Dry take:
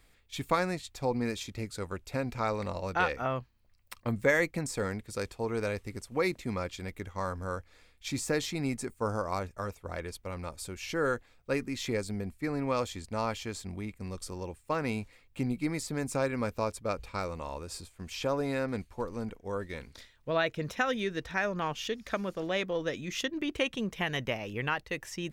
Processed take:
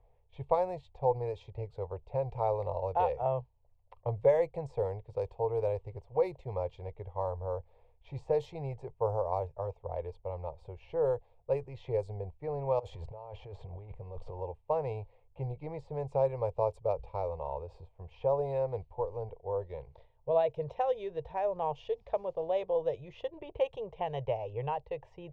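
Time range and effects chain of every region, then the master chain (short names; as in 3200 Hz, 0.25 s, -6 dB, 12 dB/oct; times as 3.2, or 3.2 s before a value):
12.79–14.4 G.711 law mismatch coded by mu + negative-ratio compressor -41 dBFS
whole clip: EQ curve 140 Hz 0 dB, 240 Hz -30 dB, 450 Hz +3 dB, 910 Hz +4 dB, 1400 Hz -24 dB, 2900 Hz -14 dB, 5800 Hz -24 dB; low-pass opened by the level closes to 2100 Hz, open at -25.5 dBFS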